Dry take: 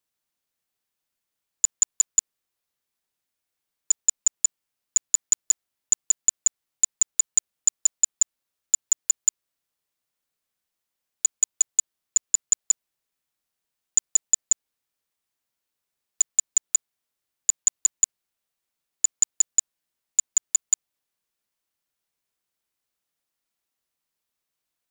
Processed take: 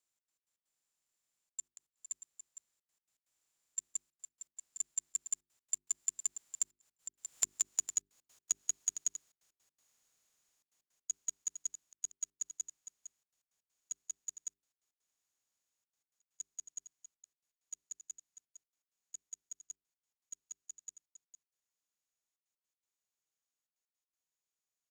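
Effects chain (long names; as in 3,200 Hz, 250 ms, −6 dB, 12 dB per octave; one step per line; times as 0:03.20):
compressor on every frequency bin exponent 0.6
source passing by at 0:07.72, 11 m/s, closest 3.1 metres
downward compressor 12 to 1, threshold −34 dBFS, peak gain reduction 20 dB
single-tap delay 458 ms −11 dB
gate pattern "xx.x.x.xxxxxxx" 161 BPM −60 dB
mains-hum notches 50/100/150/200/250/300/350/400 Hz
level +4.5 dB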